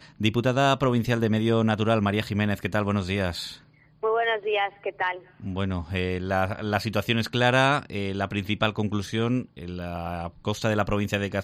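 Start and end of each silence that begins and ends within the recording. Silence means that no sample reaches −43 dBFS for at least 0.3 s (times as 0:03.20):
0:03.58–0:04.03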